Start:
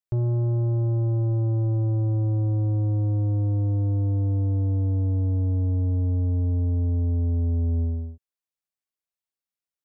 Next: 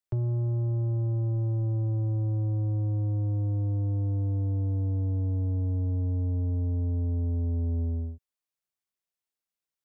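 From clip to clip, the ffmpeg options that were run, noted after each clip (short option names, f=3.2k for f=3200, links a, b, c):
-filter_complex "[0:a]acrossover=split=140|390[a][b][c];[a]acompressor=threshold=-28dB:ratio=4[d];[b]acompressor=threshold=-37dB:ratio=4[e];[c]acompressor=threshold=-46dB:ratio=4[f];[d][e][f]amix=inputs=3:normalize=0"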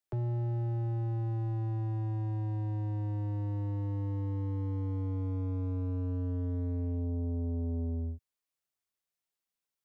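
-filter_complex "[0:a]acrossover=split=160|270[a][b][c];[a]alimiter=level_in=8dB:limit=-24dB:level=0:latency=1,volume=-8dB[d];[d][b][c]amix=inputs=3:normalize=0,asoftclip=type=hard:threshold=-28.5dB"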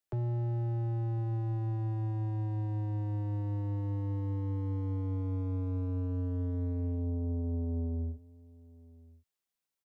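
-filter_complex "[0:a]asplit=2[a][b];[b]adelay=1050,volume=-22dB,highshelf=f=4k:g=-23.6[c];[a][c]amix=inputs=2:normalize=0"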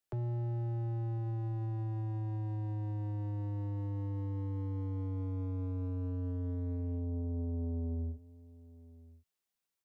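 -af "alimiter=level_in=7.5dB:limit=-24dB:level=0:latency=1:release=264,volume=-7.5dB"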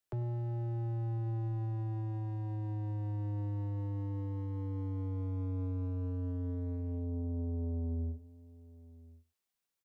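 -af "aecho=1:1:97:0.112"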